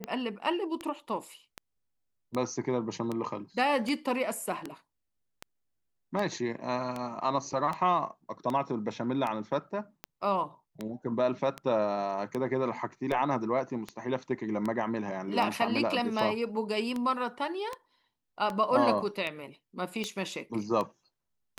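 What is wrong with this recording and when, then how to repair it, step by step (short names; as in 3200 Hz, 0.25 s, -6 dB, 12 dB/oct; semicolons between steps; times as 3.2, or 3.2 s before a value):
tick 78 rpm -20 dBFS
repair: de-click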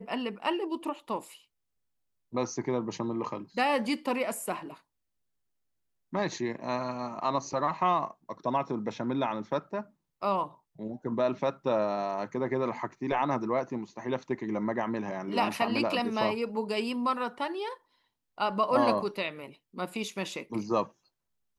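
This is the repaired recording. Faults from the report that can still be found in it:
none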